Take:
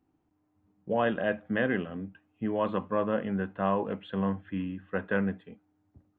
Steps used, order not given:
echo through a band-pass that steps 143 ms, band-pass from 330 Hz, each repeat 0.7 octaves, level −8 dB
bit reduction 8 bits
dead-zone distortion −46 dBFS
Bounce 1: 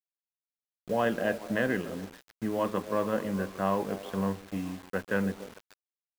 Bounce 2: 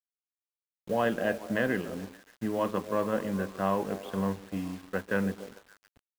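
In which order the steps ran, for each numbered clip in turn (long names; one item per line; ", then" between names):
echo through a band-pass that steps, then dead-zone distortion, then bit reduction
echo through a band-pass that steps, then bit reduction, then dead-zone distortion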